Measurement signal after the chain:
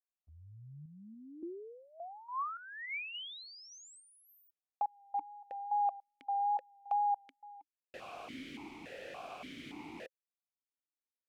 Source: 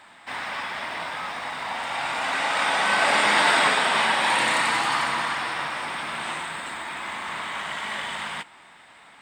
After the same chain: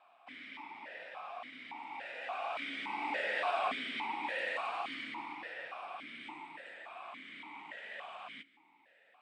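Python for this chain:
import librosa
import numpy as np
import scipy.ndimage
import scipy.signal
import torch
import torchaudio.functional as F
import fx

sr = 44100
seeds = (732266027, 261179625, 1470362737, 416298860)

y = fx.wow_flutter(x, sr, seeds[0], rate_hz=2.1, depth_cents=27.0)
y = fx.vowel_held(y, sr, hz=3.5)
y = y * 10.0 ** (-3.5 / 20.0)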